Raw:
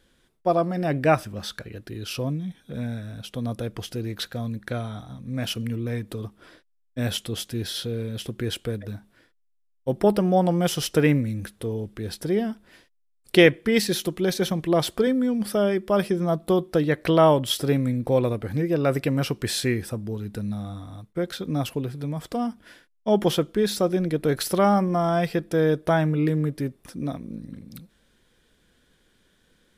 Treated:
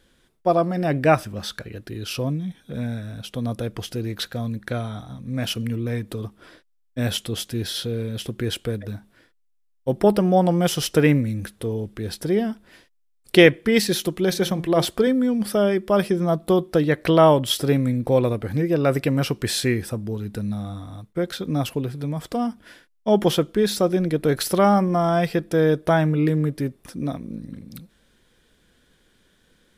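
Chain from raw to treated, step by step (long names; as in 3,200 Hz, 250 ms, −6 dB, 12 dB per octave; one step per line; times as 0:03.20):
0:14.24–0:14.85: hum removal 173.2 Hz, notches 13
level +2.5 dB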